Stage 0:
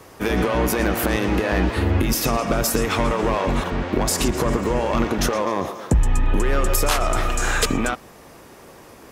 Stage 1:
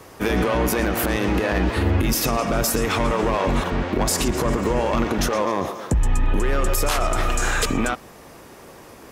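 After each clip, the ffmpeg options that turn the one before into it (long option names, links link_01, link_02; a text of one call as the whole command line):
ffmpeg -i in.wav -af "alimiter=limit=-12.5dB:level=0:latency=1:release=36,volume=1dB" out.wav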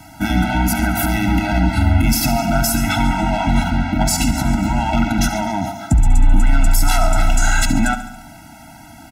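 ffmpeg -i in.wav -af "aecho=1:1:70|140|210|280|350|420|490:0.237|0.14|0.0825|0.0487|0.0287|0.017|0.01,afftfilt=real='re*eq(mod(floor(b*sr/1024/320),2),0)':imag='im*eq(mod(floor(b*sr/1024/320),2),0)':win_size=1024:overlap=0.75,volume=6.5dB" out.wav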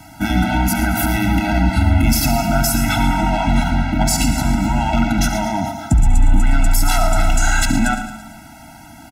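ffmpeg -i in.wav -af "aecho=1:1:112|224|336|448|560:0.251|0.131|0.0679|0.0353|0.0184" out.wav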